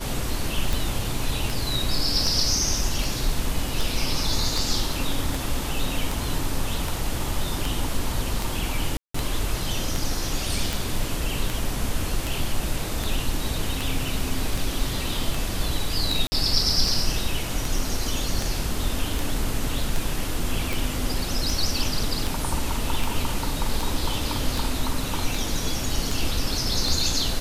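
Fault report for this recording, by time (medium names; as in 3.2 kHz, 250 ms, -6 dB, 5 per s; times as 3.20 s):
tick 78 rpm
8.97–9.14 s: dropout 174 ms
16.27–16.32 s: dropout 50 ms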